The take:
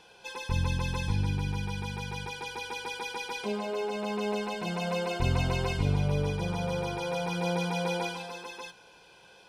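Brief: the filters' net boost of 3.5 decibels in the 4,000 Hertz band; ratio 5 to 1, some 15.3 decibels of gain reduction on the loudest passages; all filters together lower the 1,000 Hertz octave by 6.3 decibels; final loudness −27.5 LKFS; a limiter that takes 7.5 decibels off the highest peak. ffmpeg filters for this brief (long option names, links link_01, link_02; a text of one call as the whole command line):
ffmpeg -i in.wav -af "equalizer=frequency=1000:width_type=o:gain=-8.5,equalizer=frequency=4000:width_type=o:gain=5,acompressor=threshold=-40dB:ratio=5,volume=17.5dB,alimiter=limit=-18.5dB:level=0:latency=1" out.wav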